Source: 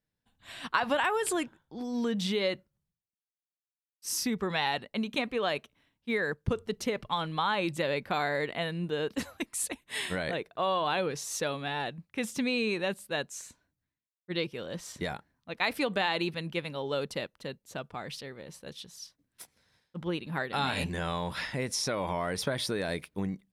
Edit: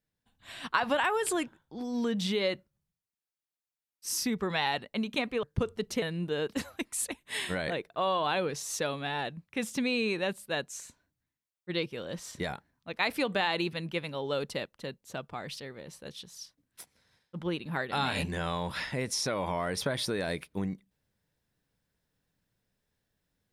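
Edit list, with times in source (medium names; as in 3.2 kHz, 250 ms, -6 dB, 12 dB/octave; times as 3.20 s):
5.43–6.33 s: delete
6.92–8.63 s: delete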